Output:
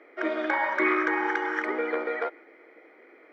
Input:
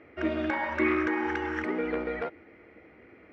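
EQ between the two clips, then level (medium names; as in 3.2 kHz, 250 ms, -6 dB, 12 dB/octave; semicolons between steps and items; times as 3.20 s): high-pass 340 Hz 24 dB/octave; dynamic bell 1.3 kHz, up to +4 dB, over -46 dBFS, Q 0.81; Butterworth band-stop 2.7 kHz, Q 7.3; +2.0 dB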